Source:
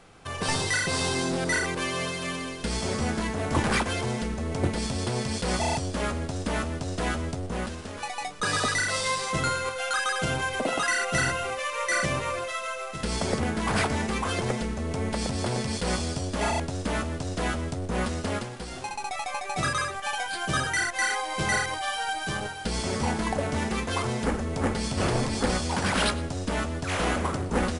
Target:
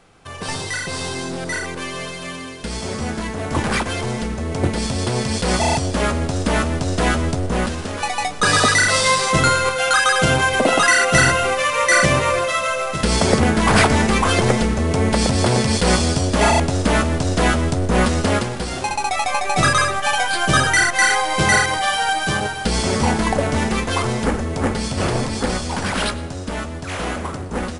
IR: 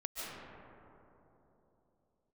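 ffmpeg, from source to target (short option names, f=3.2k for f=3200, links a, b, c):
-filter_complex "[0:a]dynaudnorm=f=750:g=13:m=13dB,asplit=2[a][b];[1:a]atrim=start_sample=2205[c];[b][c]afir=irnorm=-1:irlink=0,volume=-20dB[d];[a][d]amix=inputs=2:normalize=0"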